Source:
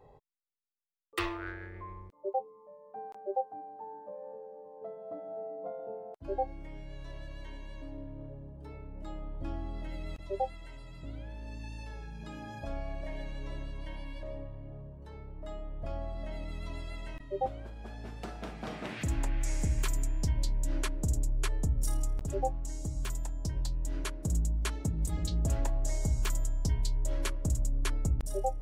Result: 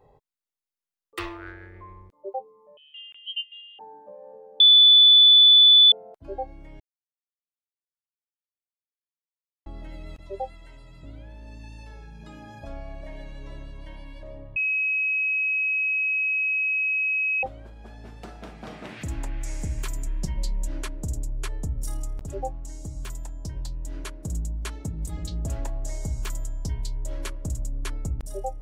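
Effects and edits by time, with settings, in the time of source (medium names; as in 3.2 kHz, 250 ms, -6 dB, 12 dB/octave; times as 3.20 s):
2.77–3.79 s: frequency inversion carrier 3.6 kHz
4.60–5.92 s: bleep 3.48 kHz -10 dBFS
6.80–9.66 s: mute
14.56–17.43 s: bleep 2.55 kHz -21.5 dBFS
20.06–20.68 s: comb 5.4 ms, depth 78%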